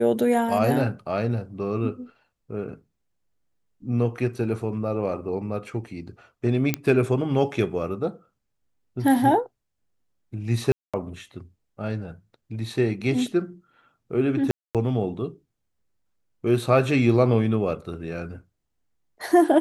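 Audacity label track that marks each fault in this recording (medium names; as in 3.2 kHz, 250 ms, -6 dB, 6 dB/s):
6.740000	6.740000	pop -7 dBFS
10.720000	10.940000	dropout 216 ms
14.510000	14.750000	dropout 237 ms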